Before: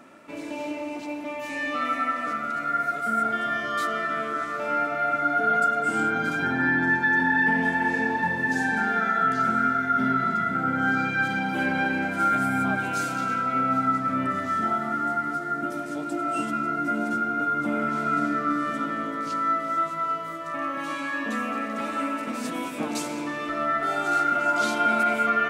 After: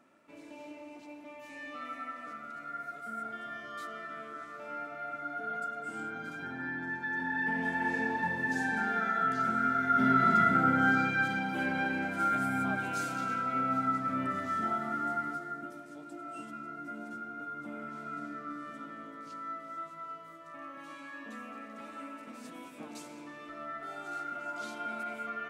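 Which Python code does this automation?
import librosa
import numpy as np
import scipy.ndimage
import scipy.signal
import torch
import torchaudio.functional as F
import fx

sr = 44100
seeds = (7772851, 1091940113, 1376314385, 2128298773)

y = fx.gain(x, sr, db=fx.line((6.91, -15.0), (7.89, -7.0), (9.59, -7.0), (10.41, 1.5), (11.48, -7.0), (15.23, -7.0), (15.81, -16.0)))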